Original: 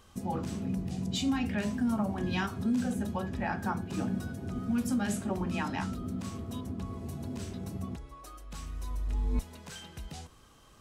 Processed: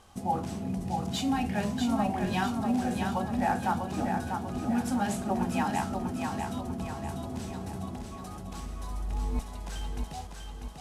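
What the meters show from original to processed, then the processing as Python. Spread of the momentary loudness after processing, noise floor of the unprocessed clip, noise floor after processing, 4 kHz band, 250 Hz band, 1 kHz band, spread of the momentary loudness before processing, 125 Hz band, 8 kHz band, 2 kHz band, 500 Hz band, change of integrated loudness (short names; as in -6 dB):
12 LU, -57 dBFS, -42 dBFS, +1.5 dB, +1.5 dB, +8.5 dB, 14 LU, +0.5 dB, +2.0 dB, +2.0 dB, +4.0 dB, +2.0 dB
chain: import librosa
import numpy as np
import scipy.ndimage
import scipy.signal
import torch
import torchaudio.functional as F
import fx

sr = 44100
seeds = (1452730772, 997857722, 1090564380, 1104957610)

y = fx.cvsd(x, sr, bps=64000)
y = fx.peak_eq(y, sr, hz=770.0, db=10.5, octaves=0.48)
y = fx.echo_feedback(y, sr, ms=644, feedback_pct=48, wet_db=-5.0)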